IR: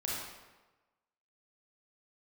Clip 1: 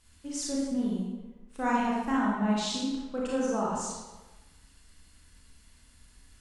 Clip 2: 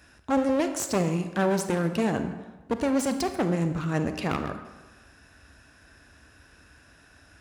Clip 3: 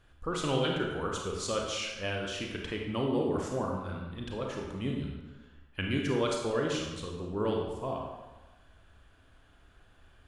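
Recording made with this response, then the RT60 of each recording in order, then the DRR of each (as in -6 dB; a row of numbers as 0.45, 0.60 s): 1; 1.2, 1.2, 1.2 s; -5.5, 8.0, -0.5 dB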